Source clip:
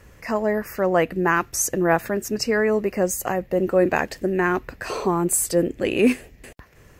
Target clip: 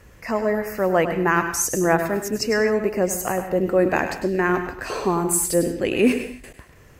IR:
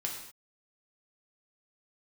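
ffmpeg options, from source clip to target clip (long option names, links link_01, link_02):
-filter_complex "[0:a]asplit=2[link_01][link_02];[1:a]atrim=start_sample=2205,afade=type=out:start_time=0.23:duration=0.01,atrim=end_sample=10584,adelay=101[link_03];[link_02][link_03]afir=irnorm=-1:irlink=0,volume=-9.5dB[link_04];[link_01][link_04]amix=inputs=2:normalize=0"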